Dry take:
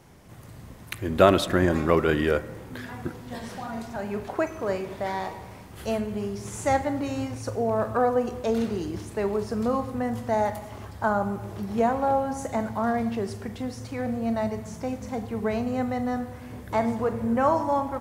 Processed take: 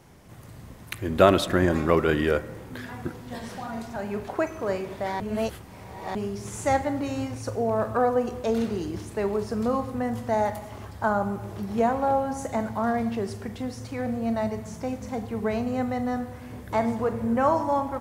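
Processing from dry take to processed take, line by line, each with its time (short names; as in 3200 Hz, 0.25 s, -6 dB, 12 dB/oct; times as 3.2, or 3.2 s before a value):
5.2–6.15 reverse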